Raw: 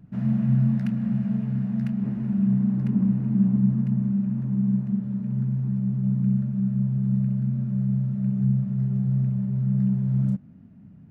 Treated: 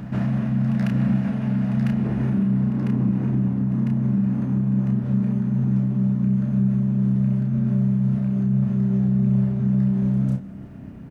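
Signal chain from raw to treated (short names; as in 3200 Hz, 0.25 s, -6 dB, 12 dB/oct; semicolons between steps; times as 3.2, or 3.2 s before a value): spectral limiter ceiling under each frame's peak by 13 dB; in parallel at -0.5 dB: compressor, threshold -36 dBFS, peak gain reduction 19 dB; on the sum: limiter -19.5 dBFS, peak gain reduction 10 dB; doubler 31 ms -5 dB; pre-echo 0.149 s -12.5 dB; reverb RT60 3.7 s, pre-delay 69 ms, DRR 13 dB; gain +2 dB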